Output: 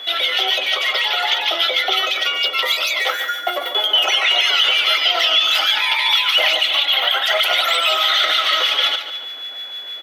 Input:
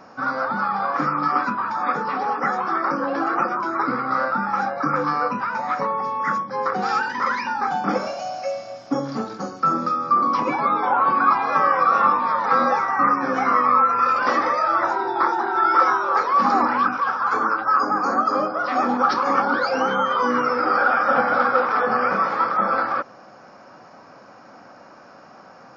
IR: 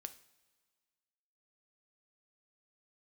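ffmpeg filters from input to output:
-filter_complex "[0:a]asplit=2[link_01][link_02];[link_02]adelay=370,lowpass=frequency=4400:poles=1,volume=-10dB,asplit=2[link_03][link_04];[link_04]adelay=370,lowpass=frequency=4400:poles=1,volume=0.43,asplit=2[link_05][link_06];[link_06]adelay=370,lowpass=frequency=4400:poles=1,volume=0.43,asplit=2[link_07][link_08];[link_08]adelay=370,lowpass=frequency=4400:poles=1,volume=0.43,asplit=2[link_09][link_10];[link_10]adelay=370,lowpass=frequency=4400:poles=1,volume=0.43[link_11];[link_01][link_03][link_05][link_07][link_09][link_11]amix=inputs=6:normalize=0,asetrate=113337,aresample=44100,aeval=exprs='val(0)+0.0282*sin(2*PI*3400*n/s)':channel_layout=same,acrossover=split=1600[link_12][link_13];[link_12]aeval=exprs='val(0)*(1-0.5/2+0.5/2*cos(2*PI*6.4*n/s))':channel_layout=same[link_14];[link_13]aeval=exprs='val(0)*(1-0.5/2-0.5/2*cos(2*PI*6.4*n/s))':channel_layout=same[link_15];[link_14][link_15]amix=inputs=2:normalize=0,alimiter=level_in=10.5dB:limit=-1dB:release=50:level=0:latency=1,volume=-5dB"

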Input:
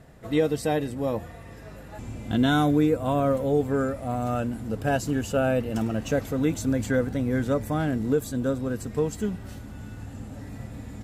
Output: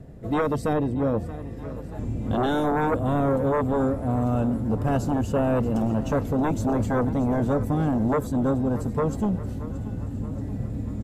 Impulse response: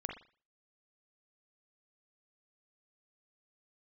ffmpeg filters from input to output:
-filter_complex "[0:a]asettb=1/sr,asplit=3[link_01][link_02][link_03];[link_01]atrim=end=0.734[link_04];[link_02]atrim=start=0.73:end=1.18,asetpts=PTS-STARTPTS,afade=type=in:duration=0.004:curve=qsin,afade=type=out:start_time=0.446:duration=0.004:curve=qsin,highshelf=frequency=5800:gain=-10.5[link_05];[link_03]atrim=start=1.176[link_06];[link_04][link_05]acrossfade=duration=0.004:curve1=hsin:curve2=qsin[link_07];[link_07][link_06]acrossfade=duration=0.004:curve1=qsin:curve2=hsin,acrossover=split=540|1400[link_08][link_09][link_10];[link_08]aeval=exprs='0.224*sin(PI/2*3.55*val(0)/0.224)':channel_layout=same[link_11];[link_11][link_09][link_10]amix=inputs=3:normalize=0,aecho=1:1:628|1256|1884|2512|3140|3768:0.158|0.0935|0.0552|0.0326|0.0192|0.0113,volume=-6.5dB"

